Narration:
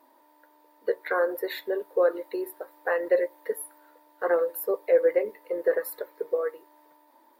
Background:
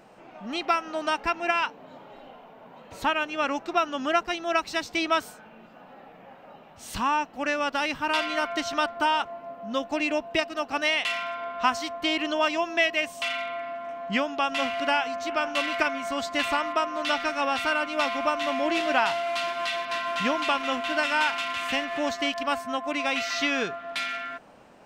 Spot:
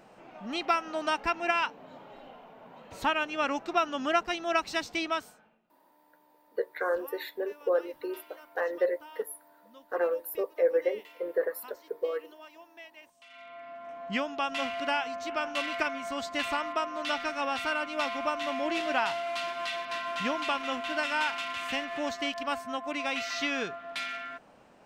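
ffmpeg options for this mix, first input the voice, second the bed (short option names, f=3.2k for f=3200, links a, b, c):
-filter_complex "[0:a]adelay=5700,volume=-4.5dB[a];[1:a]volume=18.5dB,afade=t=out:st=4.79:d=0.82:silence=0.0668344,afade=t=in:st=13.28:d=0.81:silence=0.0891251[b];[a][b]amix=inputs=2:normalize=0"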